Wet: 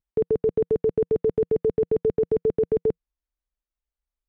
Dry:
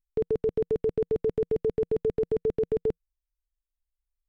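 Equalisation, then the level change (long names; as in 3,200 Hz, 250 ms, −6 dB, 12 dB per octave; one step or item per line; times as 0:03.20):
high-pass filter 81 Hz 6 dB per octave
high-frequency loss of the air 59 metres
high-shelf EQ 2,000 Hz −10.5 dB
+5.0 dB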